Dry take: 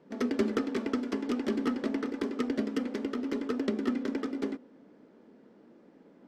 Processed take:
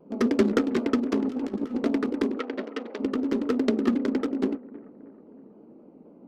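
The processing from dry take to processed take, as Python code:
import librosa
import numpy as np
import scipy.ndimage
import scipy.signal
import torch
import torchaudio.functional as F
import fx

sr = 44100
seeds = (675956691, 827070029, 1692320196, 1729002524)

p1 = fx.wiener(x, sr, points=25)
p2 = fx.over_compress(p1, sr, threshold_db=-35.0, ratio=-0.5, at=(1.16, 1.76))
p3 = fx.bandpass_edges(p2, sr, low_hz=540.0, high_hz=fx.line((2.38, 3200.0), (2.99, 4700.0)), at=(2.38, 2.99), fade=0.02)
p4 = p3 + fx.echo_bbd(p3, sr, ms=317, stages=4096, feedback_pct=50, wet_db=-20.0, dry=0)
p5 = fx.vibrato_shape(p4, sr, shape='saw_down', rate_hz=3.8, depth_cents=100.0)
y = p5 * 10.0 ** (7.0 / 20.0)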